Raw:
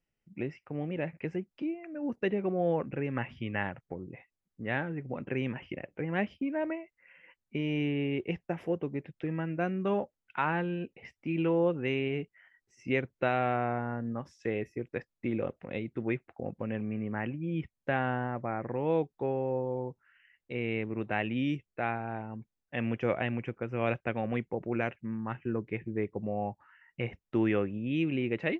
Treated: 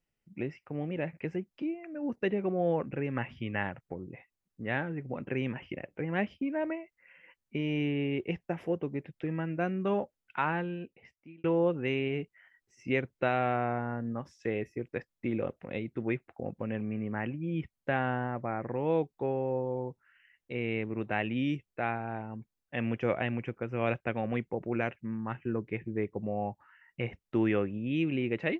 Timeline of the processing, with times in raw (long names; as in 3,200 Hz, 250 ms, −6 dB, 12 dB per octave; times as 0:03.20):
0:10.42–0:11.44: fade out